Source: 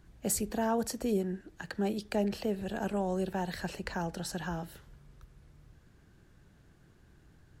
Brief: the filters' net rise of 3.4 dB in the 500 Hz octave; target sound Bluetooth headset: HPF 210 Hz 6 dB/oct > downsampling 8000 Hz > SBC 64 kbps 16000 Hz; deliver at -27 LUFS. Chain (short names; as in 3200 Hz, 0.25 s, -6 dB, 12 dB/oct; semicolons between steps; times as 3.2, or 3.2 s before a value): HPF 210 Hz 6 dB/oct; bell 500 Hz +5.5 dB; downsampling 8000 Hz; gain +6.5 dB; SBC 64 kbps 16000 Hz